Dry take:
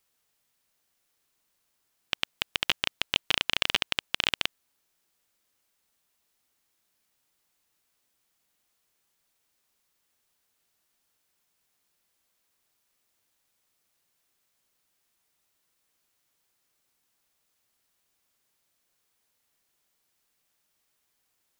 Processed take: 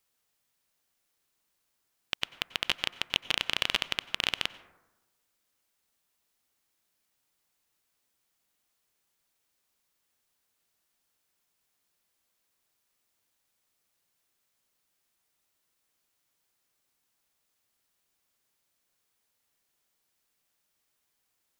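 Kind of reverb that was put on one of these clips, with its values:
dense smooth reverb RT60 1.1 s, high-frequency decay 0.3×, pre-delay 80 ms, DRR 16 dB
level −2.5 dB

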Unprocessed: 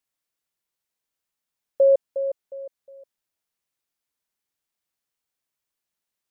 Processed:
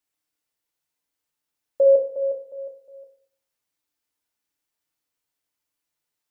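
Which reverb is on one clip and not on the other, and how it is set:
feedback delay network reverb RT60 0.56 s, low-frequency decay 0.9×, high-frequency decay 0.85×, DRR 0.5 dB
level −1 dB

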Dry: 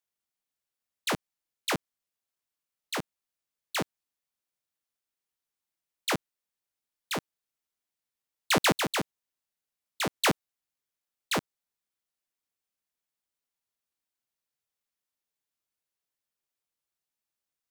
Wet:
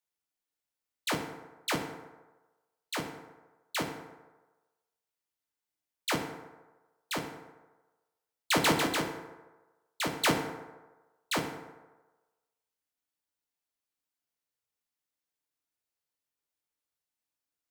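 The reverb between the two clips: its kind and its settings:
feedback delay network reverb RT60 1.2 s, low-frequency decay 0.75×, high-frequency decay 0.5×, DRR 2.5 dB
level −3 dB

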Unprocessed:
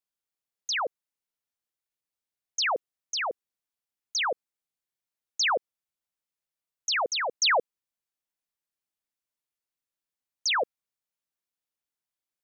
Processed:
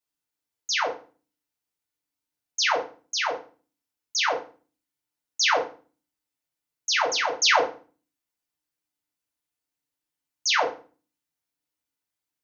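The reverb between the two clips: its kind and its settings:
feedback delay network reverb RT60 0.37 s, low-frequency decay 1.6×, high-frequency decay 0.9×, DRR −3 dB
level −1 dB

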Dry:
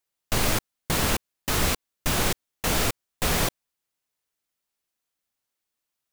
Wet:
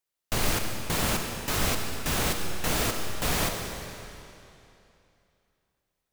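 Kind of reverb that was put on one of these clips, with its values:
comb and all-pass reverb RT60 2.8 s, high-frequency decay 0.95×, pre-delay 20 ms, DRR 3.5 dB
level −3.5 dB

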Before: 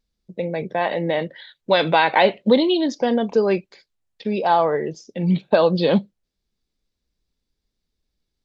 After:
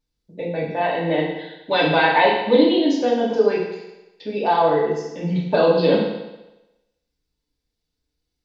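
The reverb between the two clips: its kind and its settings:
feedback delay network reverb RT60 1 s, low-frequency decay 0.85×, high-frequency decay 1×, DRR −5.5 dB
level −6 dB

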